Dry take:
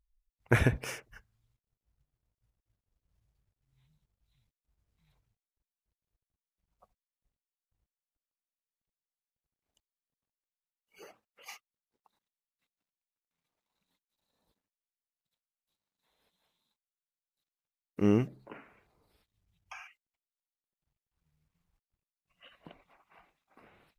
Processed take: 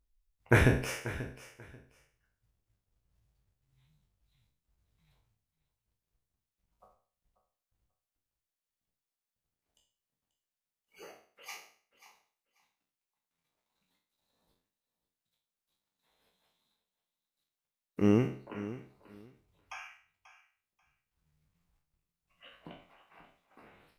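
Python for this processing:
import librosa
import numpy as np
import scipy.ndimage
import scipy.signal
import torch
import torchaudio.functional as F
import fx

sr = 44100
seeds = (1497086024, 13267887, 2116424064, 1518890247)

p1 = fx.spec_trails(x, sr, decay_s=0.47)
y = p1 + fx.echo_feedback(p1, sr, ms=537, feedback_pct=19, wet_db=-15.0, dry=0)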